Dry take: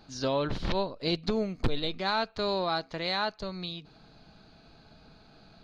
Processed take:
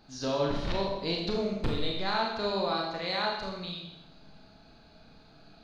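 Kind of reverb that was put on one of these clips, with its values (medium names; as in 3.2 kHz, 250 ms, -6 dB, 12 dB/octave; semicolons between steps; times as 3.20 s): Schroeder reverb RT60 0.87 s, combs from 27 ms, DRR -1.5 dB; trim -4 dB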